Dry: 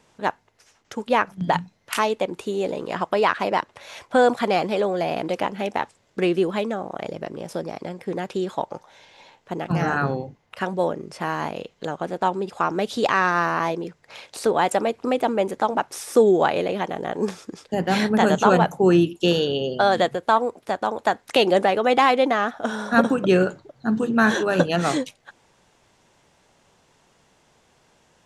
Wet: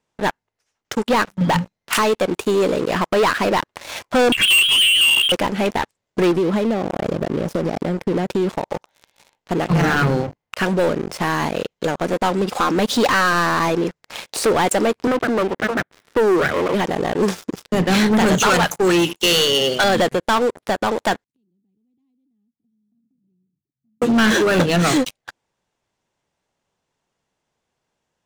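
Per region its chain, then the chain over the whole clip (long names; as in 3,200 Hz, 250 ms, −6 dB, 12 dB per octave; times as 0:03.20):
0:04.32–0:05.32: parametric band 770 Hz +10.5 dB 0.52 octaves + voice inversion scrambler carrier 3,500 Hz
0:06.31–0:08.65: tilt shelving filter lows +5 dB, about 660 Hz + downward compressor 5 to 1, threshold −25 dBFS
0:12.13–0:13.33: comb filter 3.9 ms, depth 37% + upward compression, threshold −28 dBFS
0:15.07–0:16.74: lower of the sound and its delayed copy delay 0.54 ms + Bessel high-pass filter 180 Hz, order 4 + high-frequency loss of the air 470 metres
0:18.40–0:19.84: tilt shelving filter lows −8 dB, about 770 Hz + one half of a high-frequency compander decoder only
0:21.24–0:24.02: inverse Chebyshev low-pass filter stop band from 550 Hz, stop band 50 dB + spectral tilt +4.5 dB per octave + downward compressor, threshold −49 dBFS
whole clip: dynamic equaliser 760 Hz, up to −6 dB, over −31 dBFS, Q 1.4; leveller curve on the samples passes 5; level −7 dB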